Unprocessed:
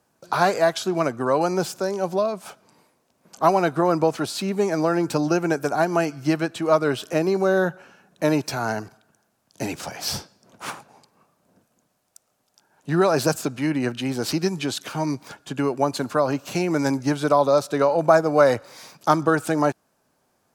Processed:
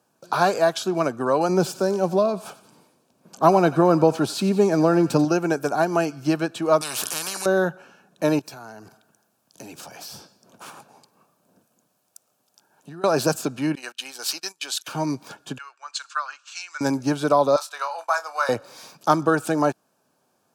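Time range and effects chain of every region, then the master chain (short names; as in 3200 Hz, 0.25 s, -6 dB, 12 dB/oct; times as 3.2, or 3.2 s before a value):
1.49–5.25 low shelf 400 Hz +7 dB + thinning echo 90 ms, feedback 64%, high-pass 1100 Hz, level -14 dB
6.81–7.46 bell 9400 Hz +14.5 dB 0.29 oct + spectral compressor 10:1
8.39–13.04 compressor, threshold -37 dBFS + high shelf 11000 Hz +7 dB
13.75–14.88 Bessel high-pass 1300 Hz + gate -41 dBFS, range -21 dB + high shelf 3900 Hz +5 dB
15.58–16.81 elliptic band-pass 1300–7600 Hz, stop band 80 dB + three-band expander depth 100%
17.56–18.49 HPF 940 Hz 24 dB/oct + expander -41 dBFS + doubler 26 ms -11 dB
whole clip: HPF 120 Hz; notch 2000 Hz, Q 5.1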